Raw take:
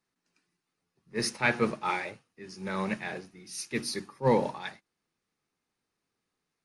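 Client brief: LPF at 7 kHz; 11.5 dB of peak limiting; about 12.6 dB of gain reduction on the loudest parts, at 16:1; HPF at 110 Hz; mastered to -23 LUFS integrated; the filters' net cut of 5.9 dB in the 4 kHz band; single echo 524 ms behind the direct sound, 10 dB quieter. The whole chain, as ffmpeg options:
-af "highpass=110,lowpass=7000,equalizer=f=4000:t=o:g=-7,acompressor=threshold=0.0282:ratio=16,alimiter=level_in=2:limit=0.0631:level=0:latency=1,volume=0.501,aecho=1:1:524:0.316,volume=8.91"

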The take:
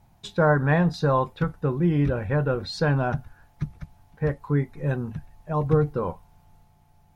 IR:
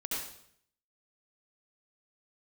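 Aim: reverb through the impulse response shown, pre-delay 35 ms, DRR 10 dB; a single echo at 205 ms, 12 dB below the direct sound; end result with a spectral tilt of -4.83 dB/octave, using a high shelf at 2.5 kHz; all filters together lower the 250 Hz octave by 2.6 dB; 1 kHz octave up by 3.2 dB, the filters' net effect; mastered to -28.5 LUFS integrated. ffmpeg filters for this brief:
-filter_complex "[0:a]equalizer=f=250:t=o:g=-5,equalizer=f=1000:t=o:g=5.5,highshelf=f=2500:g=-8,aecho=1:1:205:0.251,asplit=2[s0][s1];[1:a]atrim=start_sample=2205,adelay=35[s2];[s1][s2]afir=irnorm=-1:irlink=0,volume=0.211[s3];[s0][s3]amix=inputs=2:normalize=0,volume=0.631"

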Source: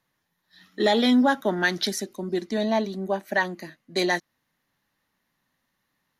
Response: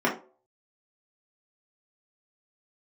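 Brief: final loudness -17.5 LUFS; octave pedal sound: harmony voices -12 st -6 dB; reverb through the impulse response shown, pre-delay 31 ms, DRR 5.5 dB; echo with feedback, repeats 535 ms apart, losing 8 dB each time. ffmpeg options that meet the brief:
-filter_complex "[0:a]aecho=1:1:535|1070|1605|2140|2675:0.398|0.159|0.0637|0.0255|0.0102,asplit=2[s0][s1];[1:a]atrim=start_sample=2205,adelay=31[s2];[s1][s2]afir=irnorm=-1:irlink=0,volume=0.1[s3];[s0][s3]amix=inputs=2:normalize=0,asplit=2[s4][s5];[s5]asetrate=22050,aresample=44100,atempo=2,volume=0.501[s6];[s4][s6]amix=inputs=2:normalize=0,volume=1.68"

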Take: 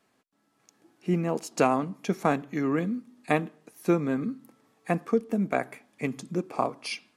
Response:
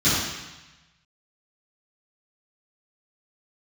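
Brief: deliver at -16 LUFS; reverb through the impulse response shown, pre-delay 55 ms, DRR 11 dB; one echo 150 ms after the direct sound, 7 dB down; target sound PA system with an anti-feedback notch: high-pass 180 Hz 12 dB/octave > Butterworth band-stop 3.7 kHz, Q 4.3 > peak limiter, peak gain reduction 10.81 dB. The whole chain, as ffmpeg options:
-filter_complex "[0:a]aecho=1:1:150:0.447,asplit=2[s0][s1];[1:a]atrim=start_sample=2205,adelay=55[s2];[s1][s2]afir=irnorm=-1:irlink=0,volume=0.0355[s3];[s0][s3]amix=inputs=2:normalize=0,highpass=180,asuperstop=centerf=3700:order=8:qfactor=4.3,volume=5.96,alimiter=limit=0.562:level=0:latency=1"

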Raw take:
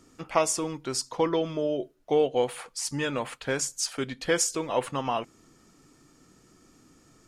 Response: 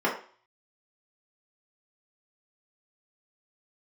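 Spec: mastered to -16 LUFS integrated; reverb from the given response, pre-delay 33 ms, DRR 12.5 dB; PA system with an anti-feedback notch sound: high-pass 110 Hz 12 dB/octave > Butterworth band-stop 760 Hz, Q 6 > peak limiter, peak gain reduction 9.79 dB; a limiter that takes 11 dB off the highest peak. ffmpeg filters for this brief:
-filter_complex "[0:a]alimiter=limit=0.0944:level=0:latency=1,asplit=2[s0][s1];[1:a]atrim=start_sample=2205,adelay=33[s2];[s1][s2]afir=irnorm=-1:irlink=0,volume=0.0473[s3];[s0][s3]amix=inputs=2:normalize=0,highpass=110,asuperstop=centerf=760:order=8:qfactor=6,volume=11.9,alimiter=limit=0.447:level=0:latency=1"

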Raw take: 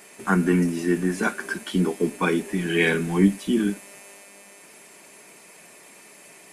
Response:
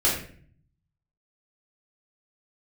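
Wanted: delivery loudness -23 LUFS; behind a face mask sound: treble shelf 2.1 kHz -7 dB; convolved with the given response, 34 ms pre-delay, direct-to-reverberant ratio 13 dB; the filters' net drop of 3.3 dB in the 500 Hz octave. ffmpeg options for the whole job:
-filter_complex "[0:a]equalizer=f=500:t=o:g=-4.5,asplit=2[s0][s1];[1:a]atrim=start_sample=2205,adelay=34[s2];[s1][s2]afir=irnorm=-1:irlink=0,volume=0.0473[s3];[s0][s3]amix=inputs=2:normalize=0,highshelf=f=2100:g=-7,volume=1.19"

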